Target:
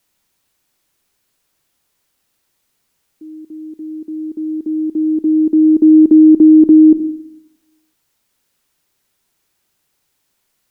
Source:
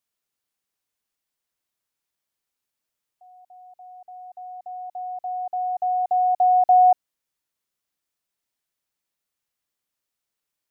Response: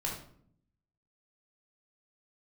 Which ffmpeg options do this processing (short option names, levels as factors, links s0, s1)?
-filter_complex "[0:a]afreqshift=-420,asplit=2[s0][s1];[1:a]atrim=start_sample=2205[s2];[s1][s2]afir=irnorm=-1:irlink=0,volume=0.119[s3];[s0][s3]amix=inputs=2:normalize=0,alimiter=level_in=6.68:limit=0.891:release=50:level=0:latency=1,volume=0.891"